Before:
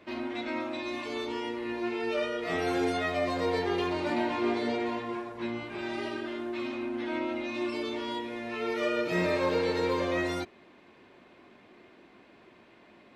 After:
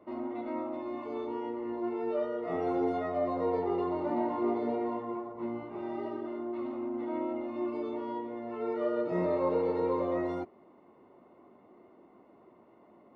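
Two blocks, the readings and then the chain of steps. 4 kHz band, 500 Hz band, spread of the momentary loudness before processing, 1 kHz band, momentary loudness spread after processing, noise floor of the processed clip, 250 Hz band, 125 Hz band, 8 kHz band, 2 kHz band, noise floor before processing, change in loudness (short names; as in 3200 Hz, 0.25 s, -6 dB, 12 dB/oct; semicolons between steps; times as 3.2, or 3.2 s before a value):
under -15 dB, -0.5 dB, 8 LU, -1.5 dB, 8 LU, -60 dBFS, -1.5 dB, -4.5 dB, under -20 dB, -14.5 dB, -57 dBFS, -2.0 dB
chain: polynomial smoothing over 65 samples; low shelf 110 Hz -10.5 dB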